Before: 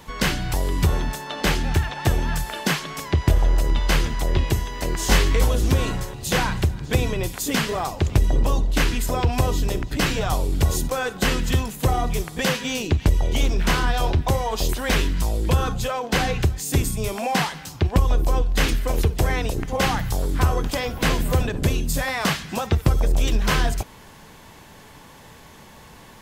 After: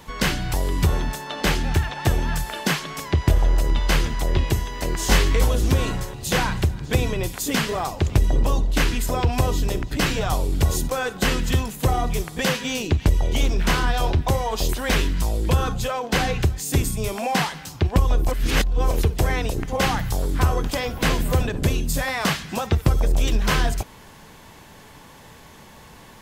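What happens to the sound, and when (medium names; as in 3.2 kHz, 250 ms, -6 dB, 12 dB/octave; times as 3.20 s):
18.28–18.91 s: reverse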